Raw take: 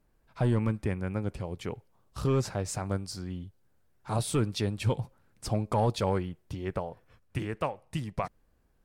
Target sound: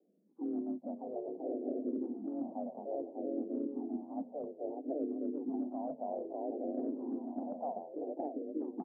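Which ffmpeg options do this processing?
-filter_complex "[0:a]asplit=2[s0][s1];[s1]aecho=0:1:600|990|1244|1408|1515:0.631|0.398|0.251|0.158|0.1[s2];[s0][s2]amix=inputs=2:normalize=0,asplit=3[s3][s4][s5];[s4]asetrate=29433,aresample=44100,atempo=1.49831,volume=0.141[s6];[s5]asetrate=58866,aresample=44100,atempo=0.749154,volume=0.355[s7];[s3][s6][s7]amix=inputs=3:normalize=0,afreqshift=150,asuperpass=centerf=390:order=12:qfactor=0.69,areverse,acompressor=threshold=0.02:ratio=6,areverse,asplit=2[s8][s9];[s9]afreqshift=-0.6[s10];[s8][s10]amix=inputs=2:normalize=1,volume=1.26"

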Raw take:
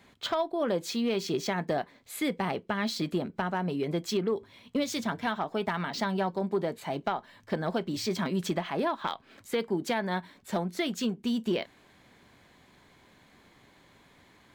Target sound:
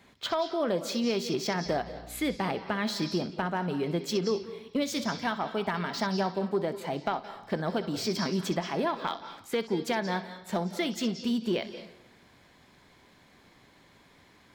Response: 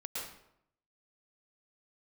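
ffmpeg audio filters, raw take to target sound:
-filter_complex "[0:a]asettb=1/sr,asplit=3[s0][s1][s2];[s0]atrim=end=1.664[s3];[s1]atrim=start=1.66:end=2.36,asetpts=PTS-STARTPTS,afade=t=in:d=0.004:c=qsin,afade=t=out:st=0.696:d=0.004:c=qsin,aeval=exprs='val(0)+0.00398*(sin(2*PI*60*n/s)+sin(2*PI*2*60*n/s)/2+sin(2*PI*3*60*n/s)/3+sin(2*PI*4*60*n/s)/4+sin(2*PI*5*60*n/s)/5)':c=same[s4];[s2]atrim=start=2.356[s5];[s3][s4]acrossfade=d=0.004:c1=hsin:c2=qsin[s6];[s6][s5]acrossfade=d=0.004:c1=qsin:c2=hsin,asplit=2[s7][s8];[s8]lowpass=f=5300:t=q:w=6.8[s9];[1:a]atrim=start_sample=2205,adelay=63[s10];[s9][s10]afir=irnorm=-1:irlink=0,volume=0.237[s11];[s7][s11]amix=inputs=2:normalize=0"

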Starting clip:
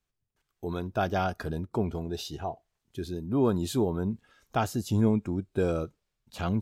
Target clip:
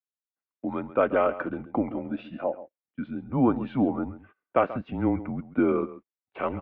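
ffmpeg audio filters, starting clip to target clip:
-filter_complex "[0:a]asplit=2[s0][s1];[s1]adelay=134.1,volume=0.178,highshelf=f=4000:g=-3.02[s2];[s0][s2]amix=inputs=2:normalize=0,agate=range=0.0562:threshold=0.00447:ratio=16:detection=peak,highpass=f=350:t=q:w=0.5412,highpass=f=350:t=q:w=1.307,lowpass=f=2500:t=q:w=0.5176,lowpass=f=2500:t=q:w=0.7071,lowpass=f=2500:t=q:w=1.932,afreqshift=-130,volume=2.11"

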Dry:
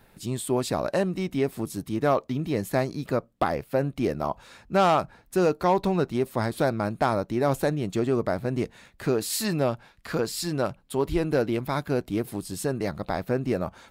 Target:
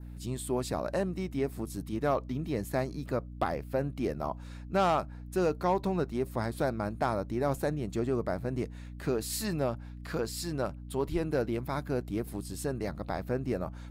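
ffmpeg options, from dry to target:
-af "aeval=exprs='val(0)+0.0158*(sin(2*PI*60*n/s)+sin(2*PI*2*60*n/s)/2+sin(2*PI*3*60*n/s)/3+sin(2*PI*4*60*n/s)/4+sin(2*PI*5*60*n/s)/5)':c=same,adynamicequalizer=threshold=0.00316:dfrequency=3200:dqfactor=1.6:tfrequency=3200:tqfactor=1.6:attack=5:release=100:ratio=0.375:range=2.5:mode=cutabove:tftype=bell,volume=0.501"

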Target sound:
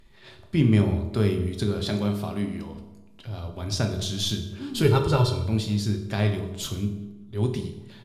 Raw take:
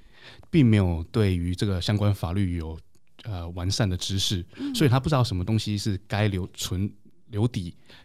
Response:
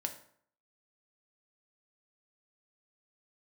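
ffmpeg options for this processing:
-filter_complex "[0:a]asettb=1/sr,asplit=3[s0][s1][s2];[s0]atrim=end=1.794[s3];[s1]atrim=start=1.79:end=2.74,asetpts=PTS-STARTPTS,afade=t=in:d=0.004:c=qsin,afade=t=out:st=0.946:d=0.004:c=qsin,highpass=170[s4];[s2]atrim=start=2.736[s5];[s3][s4]acrossfade=d=0.004:c1=hsin:c2=qsin[s6];[s6][s5]acrossfade=d=0.004:c1=qsin:c2=hsin,asettb=1/sr,asplit=3[s7][s8][s9];[s7]atrim=end=4.844[s10];[s8]atrim=start=4.84:end=5.45,asetpts=PTS-STARTPTS,afade=t=in:d=0.004:c=qsin,afade=t=out:st=0.606:d=0.004:c=qsin,aecho=1:1:2.2:0.83,atrim=end_sample=26901[s11];[s9]atrim=start=5.446[s12];[s10][s11]acrossfade=d=0.004:c1=hsin:c2=qsin[s13];[s13][s12]acrossfade=d=0.004:c1=qsin:c2=hsin,asplit=2[s14][s15];[s15]adelay=191,lowpass=f=1800:p=1,volume=0.126,asplit=2[s16][s17];[s17]adelay=191,lowpass=f=1800:p=1,volume=0.5,asplit=2[s18][s19];[s19]adelay=191,lowpass=f=1800:p=1,volume=0.5,asplit=2[s20][s21];[s21]adelay=191,lowpass=f=1800:p=1,volume=0.5[s22];[s14][s16][s18][s20][s22]amix=inputs=5:normalize=0[s23];[1:a]atrim=start_sample=2205,asetrate=29547,aresample=44100[s24];[s23][s24]afir=irnorm=-1:irlink=0,volume=0.631"

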